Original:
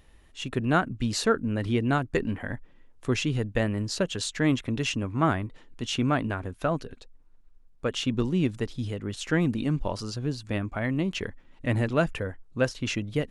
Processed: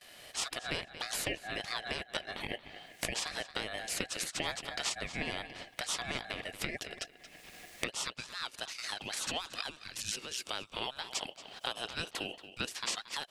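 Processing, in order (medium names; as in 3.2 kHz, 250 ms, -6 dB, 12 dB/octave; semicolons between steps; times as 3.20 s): recorder AGC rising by 33 dB/s; spectral gate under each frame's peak -15 dB weak; steep high-pass 440 Hz 72 dB/octave, from 7.87 s 1.3 kHz; gate with hold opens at -56 dBFS; filtered feedback delay 228 ms, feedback 16%, low-pass 4.6 kHz, level -14.5 dB; compression 2:1, threshold -37 dBFS, peak gain reduction 6 dB; ring modulator 1.2 kHz; tape noise reduction on one side only encoder only; trim +6 dB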